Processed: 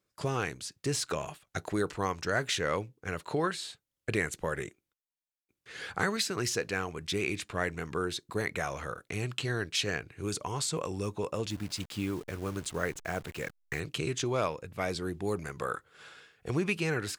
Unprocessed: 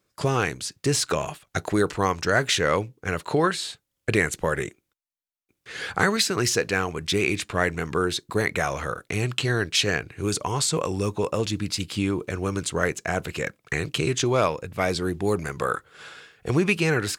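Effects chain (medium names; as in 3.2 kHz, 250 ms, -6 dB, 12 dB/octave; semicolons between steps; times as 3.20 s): 11.50–13.80 s: send-on-delta sampling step -36.5 dBFS; trim -8.5 dB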